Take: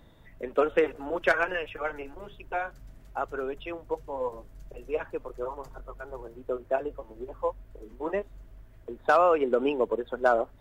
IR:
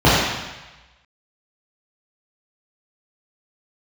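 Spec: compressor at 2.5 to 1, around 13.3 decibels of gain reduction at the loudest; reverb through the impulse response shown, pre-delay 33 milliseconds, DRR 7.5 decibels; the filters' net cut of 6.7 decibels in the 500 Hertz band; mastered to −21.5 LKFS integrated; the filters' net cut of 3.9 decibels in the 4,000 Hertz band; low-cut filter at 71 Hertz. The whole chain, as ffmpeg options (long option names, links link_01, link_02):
-filter_complex "[0:a]highpass=71,equalizer=frequency=500:width_type=o:gain=-8,equalizer=frequency=4000:width_type=o:gain=-6,acompressor=threshold=-41dB:ratio=2.5,asplit=2[link_01][link_02];[1:a]atrim=start_sample=2205,adelay=33[link_03];[link_02][link_03]afir=irnorm=-1:irlink=0,volume=-35.5dB[link_04];[link_01][link_04]amix=inputs=2:normalize=0,volume=21dB"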